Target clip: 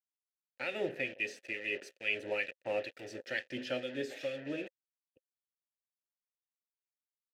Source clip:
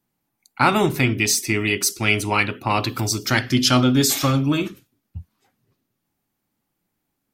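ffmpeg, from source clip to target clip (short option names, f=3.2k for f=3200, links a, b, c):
-filter_complex "[0:a]acrossover=split=1900[a][b];[a]aeval=exprs='val(0)*(1-0.7/2+0.7/2*cos(2*PI*2.2*n/s))':c=same[c];[b]aeval=exprs='val(0)*(1-0.7/2-0.7/2*cos(2*PI*2.2*n/s))':c=same[d];[c][d]amix=inputs=2:normalize=0,acrusher=bits=4:mix=0:aa=0.5,asplit=3[e][f][g];[e]bandpass=f=530:t=q:w=8,volume=0dB[h];[f]bandpass=f=1.84k:t=q:w=8,volume=-6dB[i];[g]bandpass=f=2.48k:t=q:w=8,volume=-9dB[j];[h][i][j]amix=inputs=3:normalize=0"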